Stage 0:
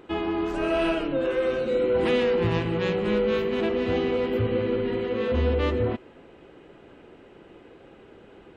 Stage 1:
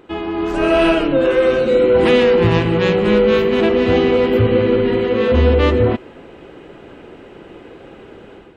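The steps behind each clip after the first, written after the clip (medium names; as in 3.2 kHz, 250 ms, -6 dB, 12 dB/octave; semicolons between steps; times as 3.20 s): level rider gain up to 8 dB; trim +3 dB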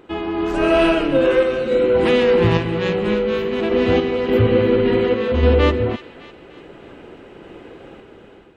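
random-step tremolo; feedback echo behind a high-pass 302 ms, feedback 50%, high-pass 1.5 kHz, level -13 dB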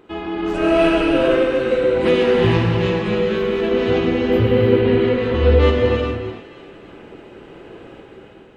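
gated-style reverb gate 470 ms flat, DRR -0.5 dB; trim -3 dB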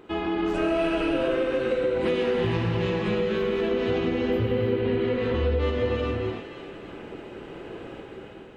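compression 4:1, threshold -23 dBFS, peak gain reduction 12.5 dB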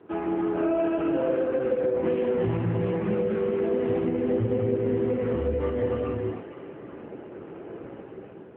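low-pass 1.6 kHz 12 dB/octave; AMR-NB 7.95 kbps 8 kHz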